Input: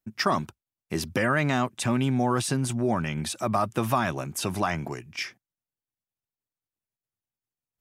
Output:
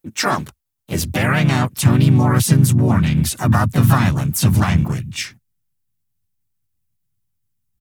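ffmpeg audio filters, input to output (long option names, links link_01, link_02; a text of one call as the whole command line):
ffmpeg -i in.wav -filter_complex "[0:a]crystalizer=i=1:c=0,asplit=4[link_01][link_02][link_03][link_04];[link_02]asetrate=35002,aresample=44100,atempo=1.25992,volume=-11dB[link_05];[link_03]asetrate=52444,aresample=44100,atempo=0.840896,volume=-3dB[link_06];[link_04]asetrate=66075,aresample=44100,atempo=0.66742,volume=-6dB[link_07];[link_01][link_05][link_06][link_07]amix=inputs=4:normalize=0,asubboost=boost=11.5:cutoff=140,volume=3dB" out.wav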